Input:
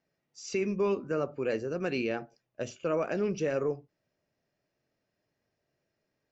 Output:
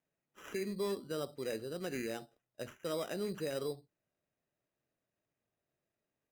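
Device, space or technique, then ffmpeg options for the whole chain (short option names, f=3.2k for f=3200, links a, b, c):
crushed at another speed: -af "asetrate=22050,aresample=44100,acrusher=samples=20:mix=1:aa=0.000001,asetrate=88200,aresample=44100,volume=-8dB"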